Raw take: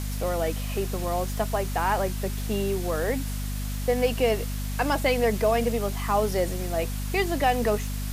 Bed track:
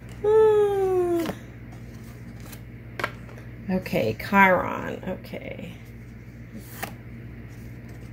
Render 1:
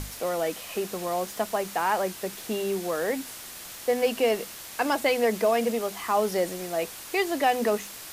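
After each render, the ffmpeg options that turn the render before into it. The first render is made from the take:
-af "bandreject=f=50:t=h:w=6,bandreject=f=100:t=h:w=6,bandreject=f=150:t=h:w=6,bandreject=f=200:t=h:w=6,bandreject=f=250:t=h:w=6"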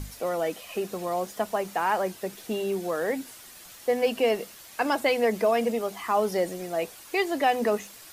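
-af "afftdn=nr=8:nf=-42"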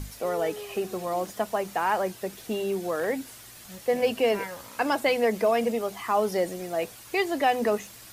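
-filter_complex "[1:a]volume=0.1[s0];[0:a][s0]amix=inputs=2:normalize=0"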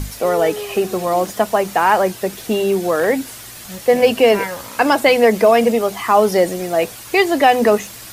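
-af "volume=3.76,alimiter=limit=0.794:level=0:latency=1"

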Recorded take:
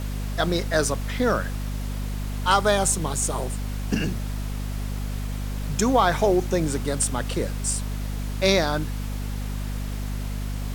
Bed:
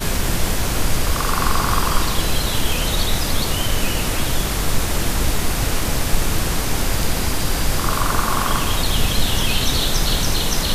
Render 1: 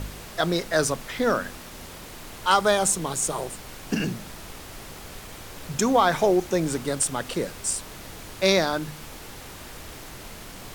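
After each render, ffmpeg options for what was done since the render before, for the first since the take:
-af "bandreject=f=50:t=h:w=4,bandreject=f=100:t=h:w=4,bandreject=f=150:t=h:w=4,bandreject=f=200:t=h:w=4,bandreject=f=250:t=h:w=4"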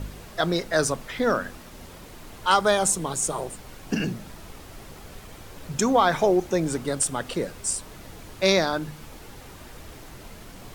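-af "afftdn=nr=6:nf=-41"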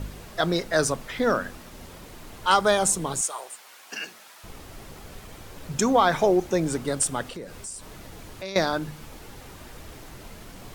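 -filter_complex "[0:a]asettb=1/sr,asplit=3[s0][s1][s2];[s0]atrim=end=3.214[s3];[s1]atrim=start=3.21:end=4.44,asetpts=PTS-STARTPTS,afade=t=in:d=0.004:c=qsin,afade=t=out:st=1.226:d=0.004:c=qsin,highpass=950[s4];[s2]atrim=start=4.436[s5];[s3][s4]acrossfade=d=0.004:c1=hsin:c2=qsin[s6];[s6][s5]acrossfade=d=0.004:c1=qsin:c2=hsin,asettb=1/sr,asplit=3[s7][s8][s9];[s7]atrim=end=7.274[s10];[s8]atrim=start=7.27:end=8.56,asetpts=PTS-STARTPTS,afade=t=in:d=0.004:c=qsin,afade=t=out:st=1.286:d=0.004:c=qsin,acompressor=threshold=0.0158:ratio=3:attack=3.2:release=140:knee=1:detection=peak[s11];[s9]atrim=start=8.556[s12];[s10][s11]acrossfade=d=0.004:c1=hsin:c2=qsin[s13];[s13][s12]acrossfade=d=0.004:c1=qsin:c2=hsin"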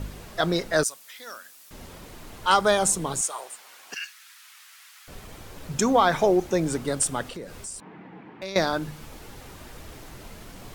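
-filter_complex "[0:a]asettb=1/sr,asplit=3[s0][s1][s2];[s0]atrim=end=0.834[s3];[s1]atrim=start=0.83:end=1.71,asetpts=PTS-STARTPTS,afade=t=in:d=0.004:c=qsin,afade=t=out:st=0.876:d=0.004:c=qsin,aderivative[s4];[s2]atrim=start=1.706[s5];[s3][s4]acrossfade=d=0.004:c1=hsin:c2=qsin[s6];[s6][s5]acrossfade=d=0.004:c1=qsin:c2=hsin,asettb=1/sr,asplit=3[s7][s8][s9];[s7]atrim=end=3.944[s10];[s8]atrim=start=3.94:end=5.08,asetpts=PTS-STARTPTS,afade=t=in:d=0.004:c=qsin,afade=t=out:st=1.136:d=0.004:c=qsin,highpass=f=1400:w=0.5412,highpass=f=1400:w=1.3066[s11];[s9]atrim=start=5.076[s12];[s10][s11]acrossfade=d=0.004:c1=hsin:c2=qsin[s13];[s13][s12]acrossfade=d=0.004:c1=qsin:c2=hsin,asettb=1/sr,asplit=3[s14][s15][s16];[s14]atrim=end=7.804[s17];[s15]atrim=start=7.8:end=8.42,asetpts=PTS-STARTPTS,afade=t=in:d=0.004:c=qsin,afade=t=out:st=0.616:d=0.004:c=qsin,highpass=f=160:w=0.5412,highpass=f=160:w=1.3066,equalizer=f=180:t=q:w=4:g=7,equalizer=f=310:t=q:w=4:g=4,equalizer=f=590:t=q:w=4:g=-8,equalizer=f=850:t=q:w=4:g=5,equalizer=f=1300:t=q:w=4:g=-4,lowpass=f=2300:w=0.5412,lowpass=f=2300:w=1.3066[s18];[s16]atrim=start=8.416[s19];[s17][s18]acrossfade=d=0.004:c1=hsin:c2=qsin[s20];[s20][s19]acrossfade=d=0.004:c1=qsin:c2=hsin"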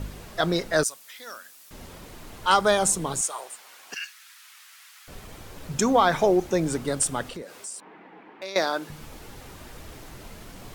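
-filter_complex "[0:a]asettb=1/sr,asplit=3[s0][s1][s2];[s0]atrim=end=7.424[s3];[s1]atrim=start=7.42:end=8.9,asetpts=PTS-STARTPTS,afade=t=in:d=0.004:c=qsin,afade=t=out:st=1.476:d=0.004:c=qsin,highpass=350[s4];[s2]atrim=start=8.896[s5];[s3][s4]acrossfade=d=0.004:c1=hsin:c2=qsin[s6];[s6][s5]acrossfade=d=0.004:c1=qsin:c2=hsin"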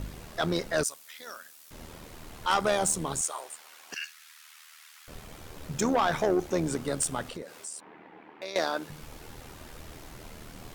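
-af "asoftclip=type=tanh:threshold=0.15,tremolo=f=78:d=0.571"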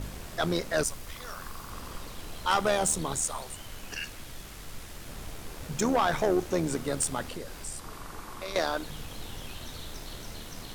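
-filter_complex "[1:a]volume=0.0631[s0];[0:a][s0]amix=inputs=2:normalize=0"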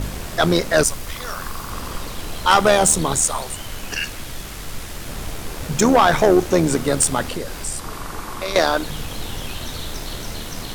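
-af "volume=3.76"

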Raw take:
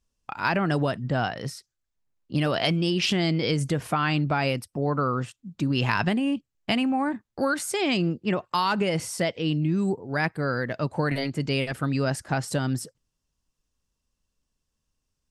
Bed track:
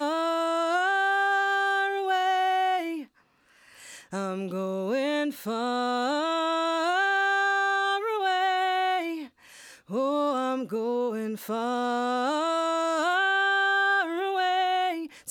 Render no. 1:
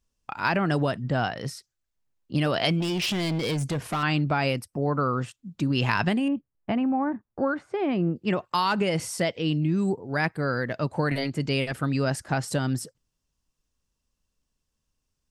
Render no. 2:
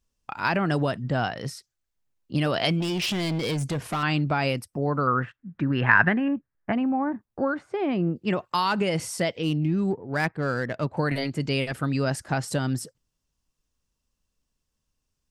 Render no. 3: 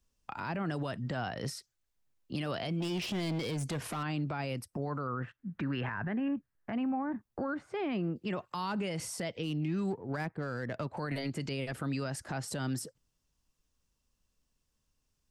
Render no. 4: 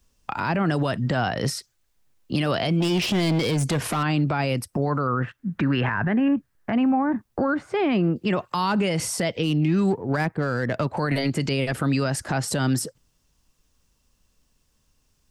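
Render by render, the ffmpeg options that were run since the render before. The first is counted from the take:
-filter_complex "[0:a]asettb=1/sr,asplit=3[s0][s1][s2];[s0]atrim=end=2.804[s3];[s1]atrim=start=2.8:end=4.03,asetpts=PTS-STARTPTS,afade=t=in:d=0.004:c=qsin,afade=t=out:st=1.226:d=0.004:c=qsin,asoftclip=type=hard:threshold=0.0668[s4];[s2]atrim=start=4.026[s5];[s3][s4]acrossfade=d=0.004:c1=hsin:c2=qsin[s6];[s6][s5]acrossfade=d=0.004:c1=qsin:c2=hsin,asettb=1/sr,asplit=3[s7][s8][s9];[s7]atrim=end=4.584[s10];[s8]atrim=start=4.58:end=5,asetpts=PTS-STARTPTS,afade=t=in:d=0.004:c=qsin,afade=t=out:st=0.416:d=0.004:c=qsin,equalizer=f=3500:t=o:w=0.77:g=-5[s11];[s9]atrim=start=4.996[s12];[s10][s11]acrossfade=d=0.004:c1=hsin:c2=qsin[s13];[s13][s12]acrossfade=d=0.004:c1=qsin:c2=hsin,asettb=1/sr,asplit=3[s14][s15][s16];[s14]atrim=end=6.284[s17];[s15]atrim=start=6.28:end=8.16,asetpts=PTS-STARTPTS,afade=t=in:d=0.004:c=qsin,afade=t=out:st=1.876:d=0.004:c=qsin,lowpass=1300[s18];[s16]atrim=start=8.156[s19];[s17][s18]acrossfade=d=0.004:c1=hsin:c2=qsin[s20];[s20][s19]acrossfade=d=0.004:c1=qsin:c2=hsin"
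-filter_complex "[0:a]asettb=1/sr,asplit=3[s0][s1][s2];[s0]atrim=end=5.074[s3];[s1]atrim=start=5.07:end=6.73,asetpts=PTS-STARTPTS,afade=t=in:d=0.004:c=qsin,afade=t=out:st=1.656:d=0.004:c=qsin,lowpass=f=1700:t=q:w=4.3[s4];[s2]atrim=start=6.726[s5];[s3][s4]acrossfade=d=0.004:c1=hsin:c2=qsin[s6];[s6][s5]acrossfade=d=0.004:c1=qsin:c2=hsin,asettb=1/sr,asplit=3[s7][s8][s9];[s7]atrim=end=9.434[s10];[s8]atrim=start=9.43:end=10.97,asetpts=PTS-STARTPTS,afade=t=in:d=0.004:c=qsin,afade=t=out:st=1.536:d=0.004:c=qsin,adynamicsmooth=sensitivity=7:basefreq=2700[s11];[s9]atrim=start=10.966[s12];[s10][s11]acrossfade=d=0.004:c1=hsin:c2=qsin[s13];[s13][s12]acrossfade=d=0.004:c1=qsin:c2=hsin"
-filter_complex "[0:a]acrossover=split=230|960[s0][s1][s2];[s0]acompressor=threshold=0.0141:ratio=4[s3];[s1]acompressor=threshold=0.0158:ratio=4[s4];[s2]acompressor=threshold=0.0112:ratio=4[s5];[s3][s4][s5]amix=inputs=3:normalize=0,alimiter=level_in=1.33:limit=0.0631:level=0:latency=1:release=28,volume=0.75"
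-af "volume=3.98"

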